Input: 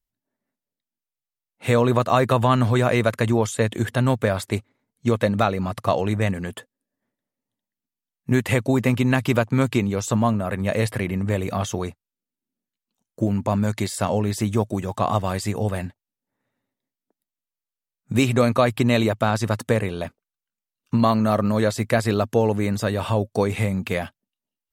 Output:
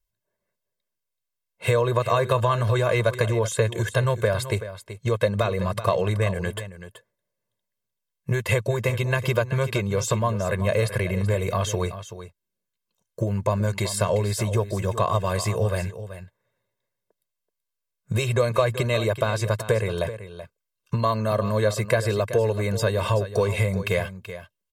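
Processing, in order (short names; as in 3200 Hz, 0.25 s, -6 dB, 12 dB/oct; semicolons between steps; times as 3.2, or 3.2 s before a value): compressor 3:1, threshold -22 dBFS, peak gain reduction 8 dB; comb 1.9 ms, depth 98%; on a send: echo 0.38 s -12.5 dB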